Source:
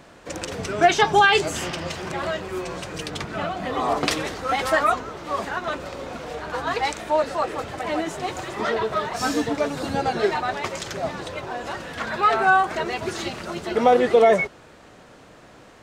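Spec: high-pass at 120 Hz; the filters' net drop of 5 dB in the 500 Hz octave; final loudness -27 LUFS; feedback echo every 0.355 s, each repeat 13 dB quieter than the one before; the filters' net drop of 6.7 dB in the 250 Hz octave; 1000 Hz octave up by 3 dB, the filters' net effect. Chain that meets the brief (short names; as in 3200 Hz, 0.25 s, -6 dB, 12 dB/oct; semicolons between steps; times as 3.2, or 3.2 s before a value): HPF 120 Hz; bell 250 Hz -6 dB; bell 500 Hz -8.5 dB; bell 1000 Hz +8 dB; feedback echo 0.355 s, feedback 22%, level -13 dB; gain -5 dB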